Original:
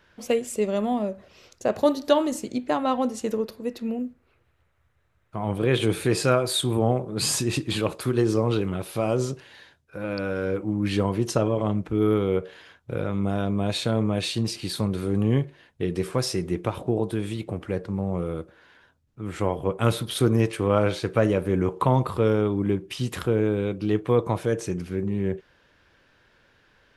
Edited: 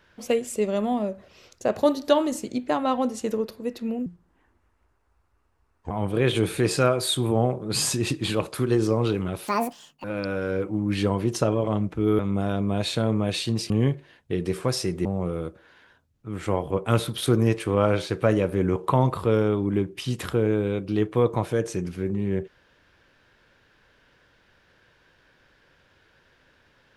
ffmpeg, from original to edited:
-filter_complex "[0:a]asplit=8[a][b][c][d][e][f][g][h];[a]atrim=end=4.064[i];[b]atrim=start=4.06:end=5.37,asetpts=PTS-STARTPTS,asetrate=31311,aresample=44100[j];[c]atrim=start=5.366:end=8.944[k];[d]atrim=start=8.94:end=9.98,asetpts=PTS-STARTPTS,asetrate=81144,aresample=44100,atrim=end_sample=24926,asetpts=PTS-STARTPTS[l];[e]atrim=start=9.976:end=12.132[m];[f]atrim=start=13.078:end=14.592[n];[g]atrim=start=15.198:end=16.552[o];[h]atrim=start=17.978[p];[i][j]acrossfade=d=0.004:c1=hsin:c2=hsin[q];[q][k]acrossfade=d=0.004:c1=hsin:c2=hsin[r];[r][l]acrossfade=d=0.004:c1=hsin:c2=hsin[s];[s][m]acrossfade=d=0.004:c1=hsin:c2=hsin[t];[t][n]acrossfade=d=0.004:c1=hsin:c2=hsin[u];[u][o]acrossfade=d=0.004:c1=hsin:c2=hsin[v];[v][p]acrossfade=d=0.004:c1=hsin:c2=hsin"

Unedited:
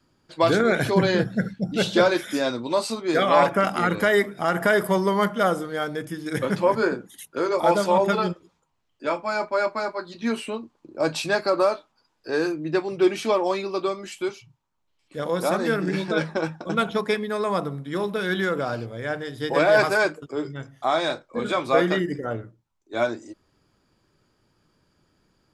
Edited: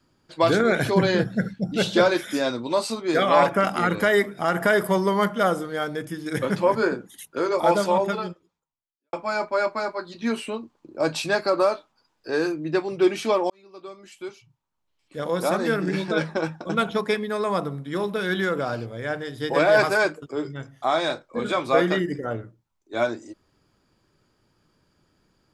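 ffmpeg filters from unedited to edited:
-filter_complex "[0:a]asplit=3[a][b][c];[a]atrim=end=9.13,asetpts=PTS-STARTPTS,afade=t=out:st=7.84:d=1.29:c=qua[d];[b]atrim=start=9.13:end=13.5,asetpts=PTS-STARTPTS,afade=t=in:d=0.004:c=hsin,afade=t=out:st=4.366:d=0.004:c=hsin[e];[c]atrim=start=13.5,asetpts=PTS-STARTPTS,afade=t=in:d=1.85[f];[d][e][f]concat=n=3:v=0:a=1"

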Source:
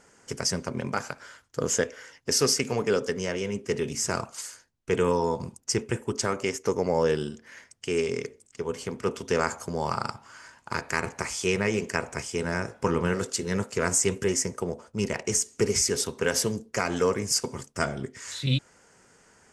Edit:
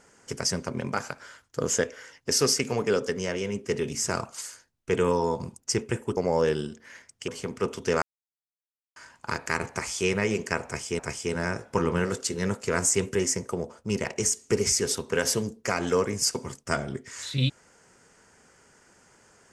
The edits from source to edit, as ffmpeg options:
-filter_complex "[0:a]asplit=6[a][b][c][d][e][f];[a]atrim=end=6.172[g];[b]atrim=start=6.788:end=7.902[h];[c]atrim=start=8.708:end=9.45,asetpts=PTS-STARTPTS,afade=t=out:st=0.738:d=0.004:c=hsin[i];[d]atrim=start=9.45:end=10.39,asetpts=PTS-STARTPTS,volume=0[j];[e]atrim=start=10.39:end=12.422,asetpts=PTS-STARTPTS,afade=t=in:d=0.004:c=hsin[k];[f]atrim=start=12.078[l];[g][h]acrossfade=d=0.004:c1=hsin:c2=hsin[m];[i][j][k]concat=n=3:v=0:a=1[n];[m][n]acrossfade=d=0.004:c1=hsin:c2=hsin[o];[o][l]acrossfade=d=0.004:c1=hsin:c2=hsin"

